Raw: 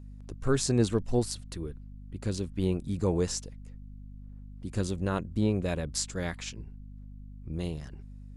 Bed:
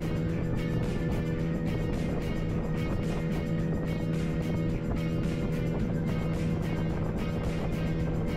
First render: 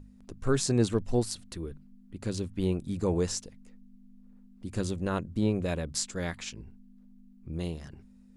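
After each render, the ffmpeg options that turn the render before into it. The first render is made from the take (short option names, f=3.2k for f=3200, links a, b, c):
-af "bandreject=f=50:t=h:w=6,bandreject=f=100:t=h:w=6,bandreject=f=150:t=h:w=6"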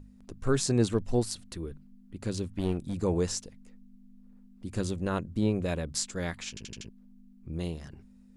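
-filter_complex "[0:a]asettb=1/sr,asplit=3[a][b][c];[a]atrim=end=2.494[d];[b]atrim=start=2.49:end=2.94,asetpts=PTS-STARTPTS,afade=t=in:d=0.004:c=qsin,afade=t=out:st=0.446:d=0.004:c=qsin,aeval=exprs='clip(val(0),-1,0.0266)':c=same[e];[c]atrim=start=2.936[f];[d][e]acrossfade=d=0.004:c1=hsin:c2=qsin[g];[g][f]acrossfade=d=0.004:c1=qsin:c2=hsin,asplit=6[h][i][j][k][l][m];[h]atrim=end=6.572[n];[i]atrim=start=6.488:end=6.572[o];[j]atrim=start=6.488:end=6.572[p];[k]atrim=start=6.488:end=6.572[q];[l]atrim=start=6.488:end=6.572[r];[m]atrim=start=6.888[s];[n][o]acrossfade=d=0.004:c1=hsin:c2=hsin[t];[t][p]acrossfade=d=0.004:c1=hsin:c2=hsin[u];[u][q]acrossfade=d=0.004:c1=hsin:c2=hsin[v];[v][r]acrossfade=d=0.004:c1=hsin:c2=hsin[w];[w][s]acrossfade=d=0.004:c1=hsin:c2=hsin"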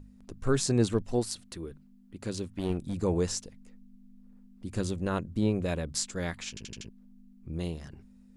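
-filter_complex "[0:a]asettb=1/sr,asplit=3[a][b][c];[a]atrim=end=1.024[d];[b]atrim=start=1.02:end=2.7,asetpts=PTS-STARTPTS,afade=t=in:d=0.004:c=qsin,afade=t=out:st=1.676:d=0.004:c=qsin,lowshelf=f=140:g=-7[e];[c]atrim=start=2.696[f];[d][e]acrossfade=d=0.004:c1=hsin:c2=qsin[g];[g][f]acrossfade=d=0.004:c1=qsin:c2=hsin"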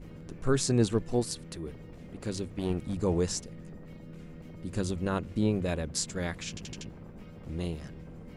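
-filter_complex "[1:a]volume=-17dB[a];[0:a][a]amix=inputs=2:normalize=0"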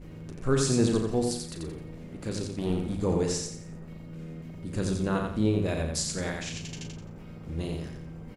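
-filter_complex "[0:a]asplit=2[a][b];[b]adelay=37,volume=-8dB[c];[a][c]amix=inputs=2:normalize=0,aecho=1:1:87|174|261|348:0.631|0.215|0.0729|0.0248"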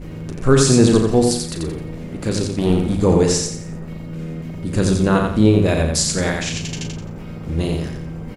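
-af "volume=12dB,alimiter=limit=-2dB:level=0:latency=1"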